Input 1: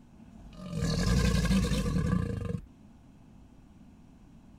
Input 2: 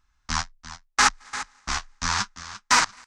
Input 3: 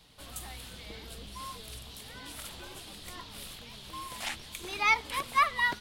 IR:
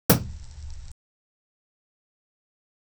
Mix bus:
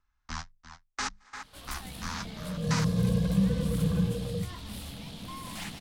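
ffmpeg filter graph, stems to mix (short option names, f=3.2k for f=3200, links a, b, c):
-filter_complex "[0:a]equalizer=f=710:t=o:w=1.6:g=11,acompressor=mode=upward:threshold=-29dB:ratio=2.5,adelay=1800,volume=-13.5dB,asplit=2[a][b];[b]volume=-23dB[c];[1:a]lowpass=f=2.9k:p=1,bandreject=f=50:t=h:w=6,bandreject=f=100:t=h:w=6,bandreject=f=150:t=h:w=6,bandreject=f=200:t=h:w=6,volume=-7.5dB[d];[2:a]aeval=exprs='(tanh(70.8*val(0)+0.45)-tanh(0.45))/70.8':c=same,adelay=1350,volume=1.5dB,asplit=2[e][f];[f]volume=-10dB[g];[3:a]atrim=start_sample=2205[h];[c][h]afir=irnorm=-1:irlink=0[i];[g]aecho=0:1:156:1[j];[a][d][e][i][j]amix=inputs=5:normalize=0,acrossover=split=450|3000[k][l][m];[l]acompressor=threshold=-40dB:ratio=2[n];[k][n][m]amix=inputs=3:normalize=0"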